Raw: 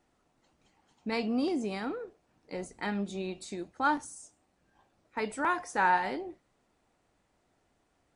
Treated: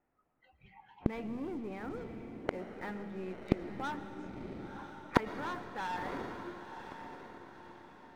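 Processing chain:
low-pass filter 2,300 Hz 24 dB per octave
leveller curve on the samples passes 3
noise reduction from a noise print of the clip's start 23 dB
in parallel at −1 dB: speech leveller 0.5 s
on the sum: mains-hum notches 50/100/150/200/250/300/350 Hz
gate with flip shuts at −29 dBFS, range −40 dB
feedback delay with all-pass diffusion 1,008 ms, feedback 42%, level −9 dB
on a send at −10.5 dB: convolution reverb RT60 2.9 s, pre-delay 80 ms
on the sum: level +17 dB

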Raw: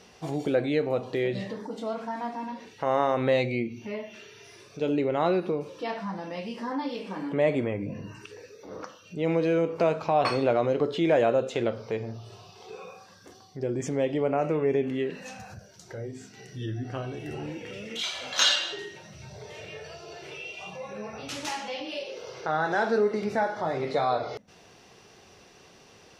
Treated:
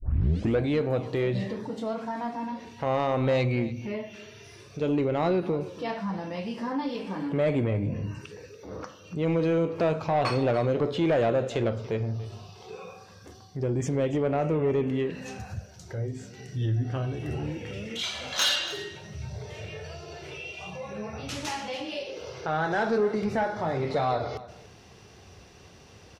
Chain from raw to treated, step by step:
turntable start at the beginning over 0.59 s
parametric band 74 Hz +14.5 dB 1.7 octaves
soft clipping −17.5 dBFS, distortion −17 dB
single-tap delay 286 ms −17 dB

